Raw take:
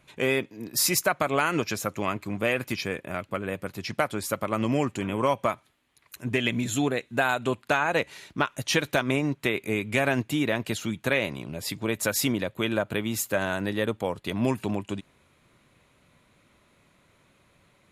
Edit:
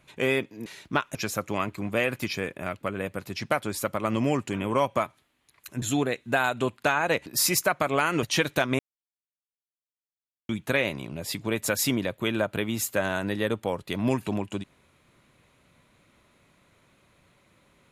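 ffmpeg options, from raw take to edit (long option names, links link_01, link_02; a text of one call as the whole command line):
ffmpeg -i in.wav -filter_complex "[0:a]asplit=8[link_01][link_02][link_03][link_04][link_05][link_06][link_07][link_08];[link_01]atrim=end=0.662[link_09];[link_02]atrim=start=8.108:end=8.602[link_10];[link_03]atrim=start=1.628:end=6.302[link_11];[link_04]atrim=start=6.668:end=8.112[link_12];[link_05]atrim=start=0.658:end=1.632[link_13];[link_06]atrim=start=8.598:end=9.16,asetpts=PTS-STARTPTS,afade=type=out:start_time=0.558:duration=0.004:curve=hsin[link_14];[link_07]atrim=start=9.16:end=10.86,asetpts=PTS-STARTPTS,volume=0[link_15];[link_08]atrim=start=10.86,asetpts=PTS-STARTPTS,afade=type=in:duration=0.004:curve=hsin[link_16];[link_09][link_10]acrossfade=duration=0.004:curve1=hsin:curve2=hsin[link_17];[link_17][link_11]acrossfade=duration=0.004:curve1=hsin:curve2=hsin[link_18];[link_18][link_12]acrossfade=duration=0.004:curve1=hsin:curve2=hsin[link_19];[link_19][link_13]acrossfade=duration=0.004:curve1=hsin:curve2=hsin[link_20];[link_14][link_15][link_16]concat=n=3:v=0:a=1[link_21];[link_20][link_21]acrossfade=duration=0.004:curve1=hsin:curve2=hsin" out.wav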